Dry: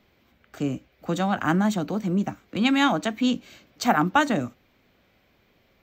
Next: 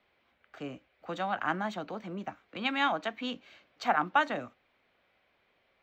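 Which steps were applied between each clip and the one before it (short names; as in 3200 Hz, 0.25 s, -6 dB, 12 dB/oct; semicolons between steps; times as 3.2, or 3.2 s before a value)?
three-band isolator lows -13 dB, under 470 Hz, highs -19 dB, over 4100 Hz; gain -4.5 dB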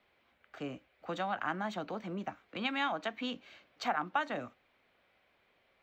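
compressor 2:1, threshold -33 dBFS, peak gain reduction 7.5 dB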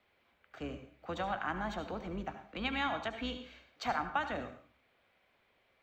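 octaver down 2 oct, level -6 dB; on a send at -8 dB: reverb RT60 0.45 s, pre-delay 68 ms; on the sum: gain -1.5 dB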